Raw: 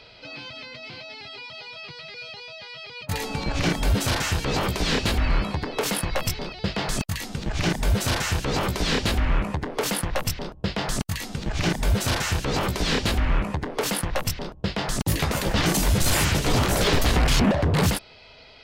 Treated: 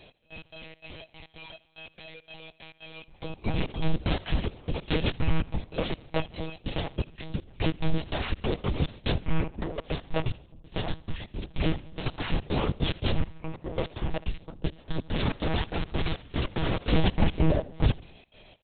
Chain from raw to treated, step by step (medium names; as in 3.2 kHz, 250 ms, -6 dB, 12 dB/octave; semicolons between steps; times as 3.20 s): peaking EQ 1.5 kHz -9 dB 1.7 oct; 15.02–16.89 s: companded quantiser 2-bit; trance gate "x..x.xx.xx.x.x" 144 bpm -24 dB; feedback delay 72 ms, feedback 52%, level -21.5 dB; monotone LPC vocoder at 8 kHz 160 Hz